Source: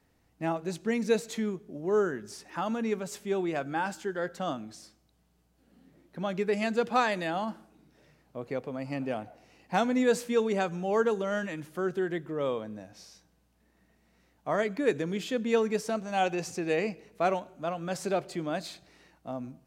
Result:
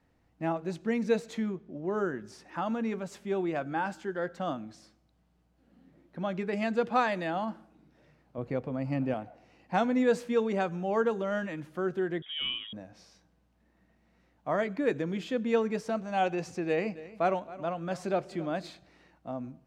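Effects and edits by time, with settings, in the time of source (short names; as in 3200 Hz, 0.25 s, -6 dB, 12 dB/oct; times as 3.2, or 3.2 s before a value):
1.51–1.98 LPF 5900 Hz
8.38–9.14 low shelf 190 Hz +10 dB
12.22–12.73 inverted band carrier 3500 Hz
16.68–18.7 echo 0.27 s -17.5 dB
whole clip: LPF 2500 Hz 6 dB/oct; notch 420 Hz, Q 13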